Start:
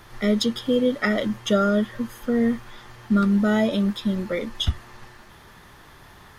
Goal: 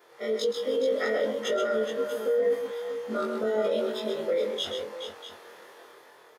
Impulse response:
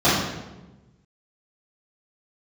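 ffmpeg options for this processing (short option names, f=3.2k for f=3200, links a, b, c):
-filter_complex "[0:a]afftfilt=real='re':imag='-im':win_size=2048:overlap=0.75,dynaudnorm=f=100:g=13:m=7.5dB,highpass=f=470:t=q:w=4.9,alimiter=limit=-14dB:level=0:latency=1:release=17,asplit=2[a][b];[b]aecho=0:1:129|422|642:0.447|0.355|0.224[c];[a][c]amix=inputs=2:normalize=0,volume=-6.5dB"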